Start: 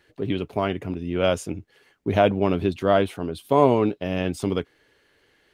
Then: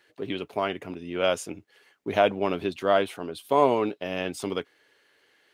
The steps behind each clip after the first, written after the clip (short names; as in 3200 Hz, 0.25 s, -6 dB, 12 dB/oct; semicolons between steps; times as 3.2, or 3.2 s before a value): HPF 530 Hz 6 dB/oct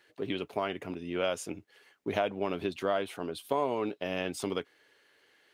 compressor 3:1, threshold -26 dBFS, peak gain reduction 9.5 dB; gain -1.5 dB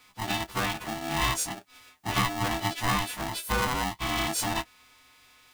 frequency quantiser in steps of 2 st; bell 180 Hz +8.5 dB 0.47 oct; polarity switched at an audio rate 500 Hz; gain +2.5 dB